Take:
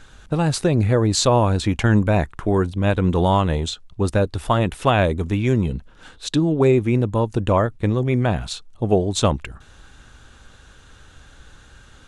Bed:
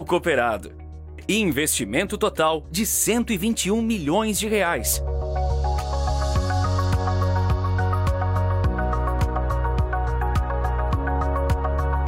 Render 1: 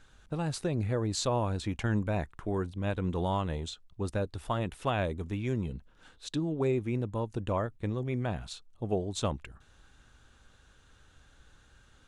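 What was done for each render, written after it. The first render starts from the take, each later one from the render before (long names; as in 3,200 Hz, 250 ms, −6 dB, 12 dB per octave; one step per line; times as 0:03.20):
level −13 dB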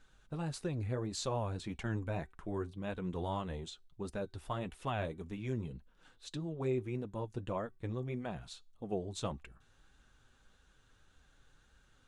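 tuned comb filter 380 Hz, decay 0.35 s, harmonics all, mix 30%
flanger 1.7 Hz, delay 3.8 ms, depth 4.6 ms, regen −36%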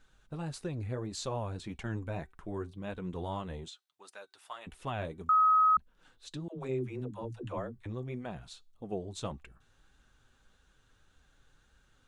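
0:03.68–0:04.67: high-pass filter 1,000 Hz
0:05.29–0:05.77: beep over 1,270 Hz −20.5 dBFS
0:06.48–0:07.86: all-pass dispersion lows, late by 101 ms, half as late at 300 Hz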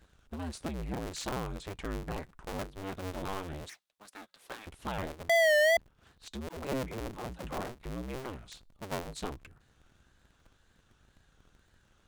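sub-harmonics by changed cycles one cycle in 2, inverted
tape wow and flutter 100 cents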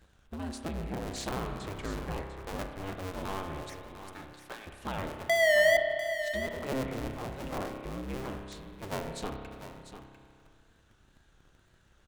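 on a send: single-tap delay 697 ms −11 dB
on the sum: spring reverb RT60 2.2 s, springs 30 ms, chirp 65 ms, DRR 4.5 dB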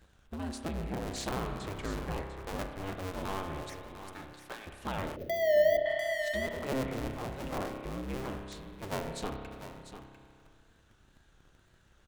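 0:05.16–0:05.86: drawn EQ curve 180 Hz 0 dB, 570 Hz +5 dB, 900 Hz −24 dB, 1,800 Hz −13 dB, 4,200 Hz −10 dB, 6,400 Hz −10 dB, 9,400 Hz −30 dB, 15,000 Hz +4 dB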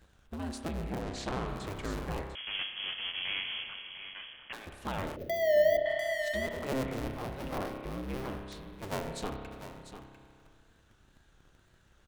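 0:01.02–0:01.48: high-frequency loss of the air 69 metres
0:02.35–0:04.53: voice inversion scrambler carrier 3,300 Hz
0:07.05–0:08.76: parametric band 7,300 Hz −6 dB 0.41 octaves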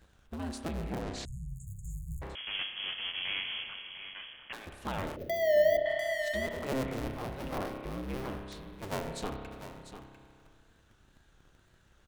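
0:01.25–0:02.22: linear-phase brick-wall band-stop 170–6,500 Hz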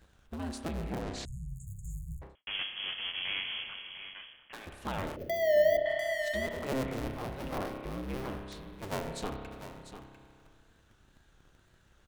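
0:02.00–0:02.47: fade out and dull
0:04.02–0:04.53: fade out, to −11 dB
0:05.16–0:06.26: notch filter 3,800 Hz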